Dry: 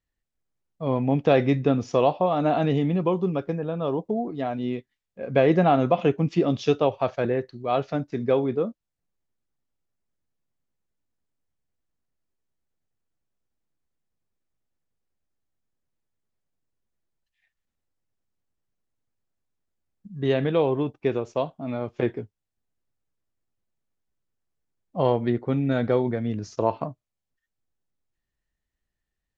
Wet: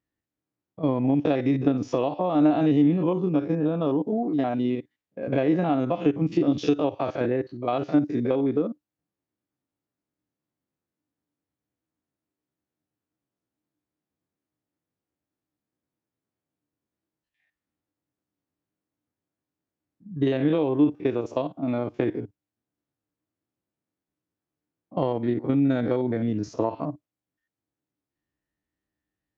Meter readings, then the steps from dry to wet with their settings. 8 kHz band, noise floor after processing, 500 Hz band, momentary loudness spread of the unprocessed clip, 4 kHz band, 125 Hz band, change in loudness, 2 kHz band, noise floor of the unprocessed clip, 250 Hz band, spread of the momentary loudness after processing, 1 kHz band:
n/a, under -85 dBFS, -3.0 dB, 10 LU, -3.5 dB, -2.0 dB, -0.5 dB, -4.0 dB, -84 dBFS, +3.5 dB, 7 LU, -4.0 dB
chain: stepped spectrum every 50 ms; HPF 96 Hz; compressor, threshold -25 dBFS, peak gain reduction 10.5 dB; bell 300 Hz +11.5 dB 0.23 oct; mismatched tape noise reduction decoder only; gain +3.5 dB

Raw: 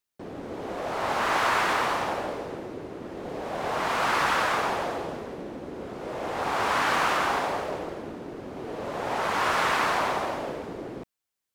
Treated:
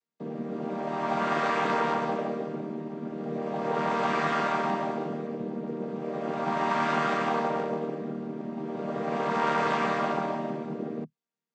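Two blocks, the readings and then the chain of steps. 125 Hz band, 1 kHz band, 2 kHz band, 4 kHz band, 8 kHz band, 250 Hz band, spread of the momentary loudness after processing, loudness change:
+3.5 dB, -2.0 dB, -5.0 dB, -8.0 dB, -11.5 dB, +5.0 dB, 10 LU, -2.0 dB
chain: chord vocoder major triad, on D#3

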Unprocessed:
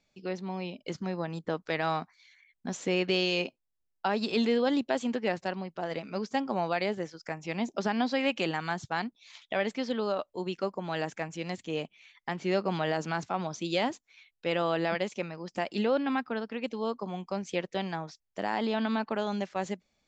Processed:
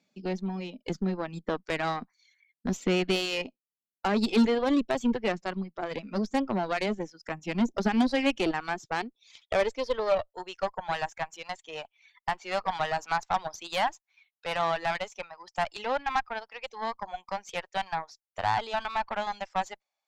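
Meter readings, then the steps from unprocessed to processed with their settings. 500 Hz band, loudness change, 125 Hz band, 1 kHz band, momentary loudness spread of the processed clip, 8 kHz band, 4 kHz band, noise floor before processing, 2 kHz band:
0.0 dB, +1.5 dB, -0.5 dB, +4.0 dB, 12 LU, n/a, +0.5 dB, -80 dBFS, +1.5 dB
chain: reverb removal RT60 1.5 s; high-pass sweep 200 Hz -> 820 Hz, 7.67–10.93; added harmonics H 8 -21 dB, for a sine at -12.5 dBFS

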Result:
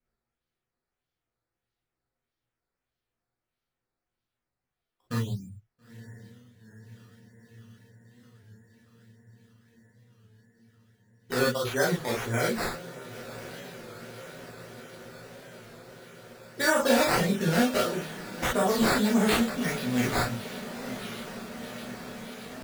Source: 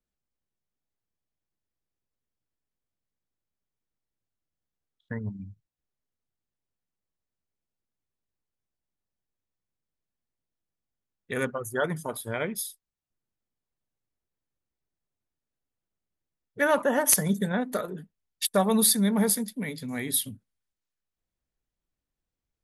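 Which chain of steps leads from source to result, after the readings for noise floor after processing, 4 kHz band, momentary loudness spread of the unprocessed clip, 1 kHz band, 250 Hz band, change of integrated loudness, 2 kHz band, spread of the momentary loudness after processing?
under -85 dBFS, +2.5 dB, 16 LU, +3.0 dB, +1.5 dB, -1.5 dB, +4.0 dB, 22 LU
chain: limiter -17 dBFS, peak gain reduction 11 dB; on a send: diffused feedback echo 0.918 s, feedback 77%, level -14.5 dB; on the sum: decimation with a swept rate 10×, swing 100% 1.6 Hz; non-linear reverb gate 80 ms flat, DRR -5.5 dB; record warp 33 1/3 rpm, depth 100 cents; gain -2.5 dB

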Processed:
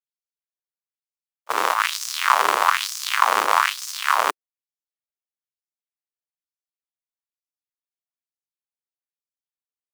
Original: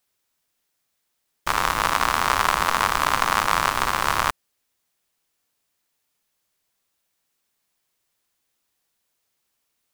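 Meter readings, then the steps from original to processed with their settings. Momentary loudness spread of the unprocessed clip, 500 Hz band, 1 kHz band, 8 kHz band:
4 LU, +1.0 dB, +1.0 dB, +1.0 dB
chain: in parallel at -9.5 dB: hard clip -15.5 dBFS, distortion -7 dB; on the sum: gate -20 dBFS, range -31 dB; LFO high-pass sine 1.1 Hz 380–5900 Hz; gain -1.5 dB

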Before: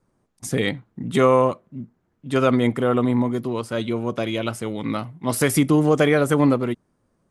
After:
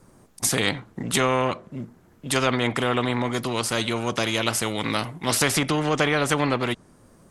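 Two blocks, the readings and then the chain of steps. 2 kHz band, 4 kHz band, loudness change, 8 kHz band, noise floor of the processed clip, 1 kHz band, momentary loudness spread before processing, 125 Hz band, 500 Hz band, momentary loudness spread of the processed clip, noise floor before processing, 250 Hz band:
+3.0 dB, +7.0 dB, -2.5 dB, +6.0 dB, -56 dBFS, -0.5 dB, 11 LU, -4.0 dB, -5.0 dB, 9 LU, -70 dBFS, -6.0 dB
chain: high shelf 7000 Hz +9.5 dB; treble ducked by the level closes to 2700 Hz, closed at -13 dBFS; spectral compressor 2:1

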